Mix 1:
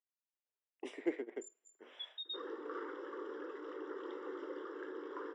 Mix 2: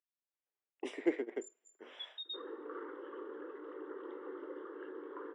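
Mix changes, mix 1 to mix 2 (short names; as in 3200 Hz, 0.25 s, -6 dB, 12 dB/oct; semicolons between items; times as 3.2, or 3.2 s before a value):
speech +4.0 dB; second sound: add air absorption 440 m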